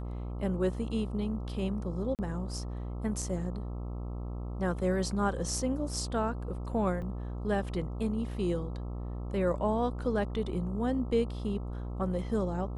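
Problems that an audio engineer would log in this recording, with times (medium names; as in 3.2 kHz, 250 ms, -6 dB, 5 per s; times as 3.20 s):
buzz 60 Hz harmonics 22 -37 dBFS
2.15–2.19 s: dropout 38 ms
7.02 s: dropout 3.2 ms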